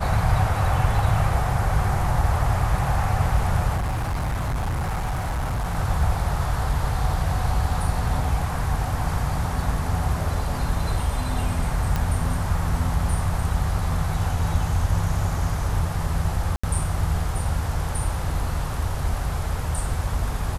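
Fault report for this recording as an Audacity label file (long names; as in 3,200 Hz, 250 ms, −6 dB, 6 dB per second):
3.760000	5.760000	clipping −22 dBFS
11.960000	11.960000	click −11 dBFS
16.560000	16.640000	drop-out 75 ms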